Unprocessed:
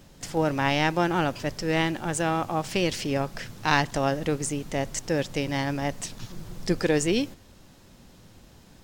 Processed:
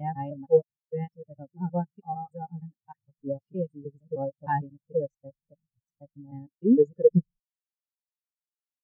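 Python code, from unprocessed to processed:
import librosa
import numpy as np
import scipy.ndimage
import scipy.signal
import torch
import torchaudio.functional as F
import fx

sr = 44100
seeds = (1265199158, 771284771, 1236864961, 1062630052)

y = fx.block_reorder(x, sr, ms=154.0, group=6)
y = fx.notch_comb(y, sr, f0_hz=330.0)
y = fx.spectral_expand(y, sr, expansion=4.0)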